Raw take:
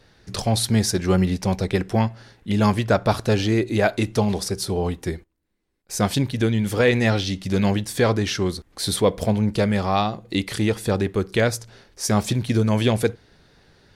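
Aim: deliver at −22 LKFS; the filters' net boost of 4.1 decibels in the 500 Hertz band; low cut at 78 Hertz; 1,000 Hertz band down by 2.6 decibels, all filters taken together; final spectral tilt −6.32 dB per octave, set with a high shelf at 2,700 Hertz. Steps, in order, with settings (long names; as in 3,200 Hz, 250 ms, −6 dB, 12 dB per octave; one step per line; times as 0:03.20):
high-pass filter 78 Hz
parametric band 500 Hz +6.5 dB
parametric band 1,000 Hz −6.5 dB
high-shelf EQ 2,700 Hz −4.5 dB
level −1 dB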